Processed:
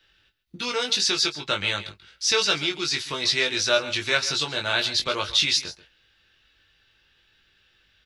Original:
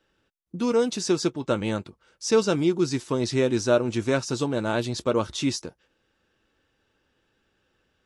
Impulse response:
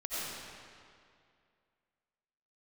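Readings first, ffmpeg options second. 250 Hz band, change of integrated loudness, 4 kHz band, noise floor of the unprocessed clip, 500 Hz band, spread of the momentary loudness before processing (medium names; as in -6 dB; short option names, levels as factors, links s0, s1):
-11.5 dB, +2.5 dB, +13.0 dB, -72 dBFS, -6.0 dB, 8 LU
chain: -filter_complex "[0:a]acrossover=split=430|1100[s0][s1][s2];[s0]acompressor=threshold=0.0158:ratio=5[s3];[s3][s1][s2]amix=inputs=3:normalize=0,equalizer=f=125:t=o:w=1:g=-6,equalizer=f=250:t=o:w=1:g=-11,equalizer=f=500:t=o:w=1:g=-9,equalizer=f=1000:t=o:w=1:g=-7,equalizer=f=2000:t=o:w=1:g=4,equalizer=f=4000:t=o:w=1:g=9,equalizer=f=8000:t=o:w=1:g=-8,asplit=2[s4][s5];[s5]aecho=0:1:136:0.168[s6];[s4][s6]amix=inputs=2:normalize=0,acontrast=54,equalizer=f=130:w=1.7:g=3,asplit=2[s7][s8];[s8]adelay=20,volume=0.596[s9];[s7][s9]amix=inputs=2:normalize=0"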